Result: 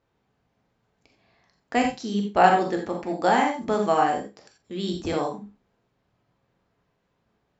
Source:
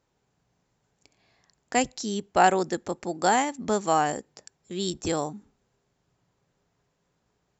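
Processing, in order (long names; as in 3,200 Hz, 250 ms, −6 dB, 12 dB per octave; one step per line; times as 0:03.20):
low-pass filter 3,700 Hz 12 dB per octave
flutter between parallel walls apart 7.6 metres, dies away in 0.22 s
reverb whose tail is shaped and stops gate 110 ms flat, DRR 1.5 dB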